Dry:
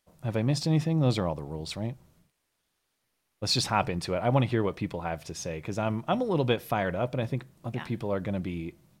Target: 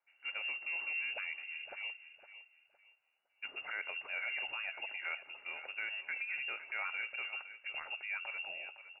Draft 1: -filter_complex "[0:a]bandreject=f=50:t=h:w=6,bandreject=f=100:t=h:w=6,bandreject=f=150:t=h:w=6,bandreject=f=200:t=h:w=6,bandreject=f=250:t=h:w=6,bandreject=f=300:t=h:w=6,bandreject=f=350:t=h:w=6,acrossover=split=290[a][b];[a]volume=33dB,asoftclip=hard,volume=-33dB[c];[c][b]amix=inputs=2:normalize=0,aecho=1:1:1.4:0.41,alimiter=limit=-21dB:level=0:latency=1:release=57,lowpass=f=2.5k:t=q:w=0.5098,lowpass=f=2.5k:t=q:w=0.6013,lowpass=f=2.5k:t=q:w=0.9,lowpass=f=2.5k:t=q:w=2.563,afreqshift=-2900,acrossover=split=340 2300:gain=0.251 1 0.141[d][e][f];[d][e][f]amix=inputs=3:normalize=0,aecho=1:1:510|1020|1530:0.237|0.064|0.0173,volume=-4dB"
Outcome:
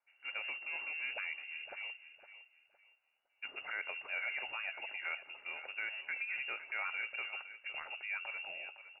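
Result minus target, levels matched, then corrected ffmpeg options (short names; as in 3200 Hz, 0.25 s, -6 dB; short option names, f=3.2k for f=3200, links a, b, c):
overloaded stage: distortion +11 dB
-filter_complex "[0:a]bandreject=f=50:t=h:w=6,bandreject=f=100:t=h:w=6,bandreject=f=150:t=h:w=6,bandreject=f=200:t=h:w=6,bandreject=f=250:t=h:w=6,bandreject=f=300:t=h:w=6,bandreject=f=350:t=h:w=6,acrossover=split=290[a][b];[a]volume=24dB,asoftclip=hard,volume=-24dB[c];[c][b]amix=inputs=2:normalize=0,aecho=1:1:1.4:0.41,alimiter=limit=-21dB:level=0:latency=1:release=57,lowpass=f=2.5k:t=q:w=0.5098,lowpass=f=2.5k:t=q:w=0.6013,lowpass=f=2.5k:t=q:w=0.9,lowpass=f=2.5k:t=q:w=2.563,afreqshift=-2900,acrossover=split=340 2300:gain=0.251 1 0.141[d][e][f];[d][e][f]amix=inputs=3:normalize=0,aecho=1:1:510|1020|1530:0.237|0.064|0.0173,volume=-4dB"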